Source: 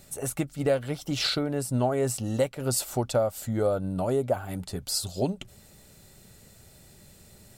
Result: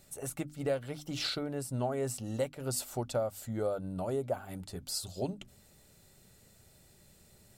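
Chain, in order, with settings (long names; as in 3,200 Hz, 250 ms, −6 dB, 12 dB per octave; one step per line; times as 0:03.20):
mains-hum notches 50/100/150/200/250/300 Hz
level −7.5 dB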